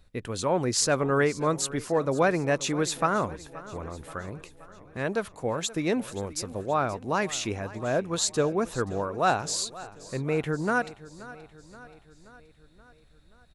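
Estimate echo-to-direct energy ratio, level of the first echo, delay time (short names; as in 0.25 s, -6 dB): -16.0 dB, -18.0 dB, 0.527 s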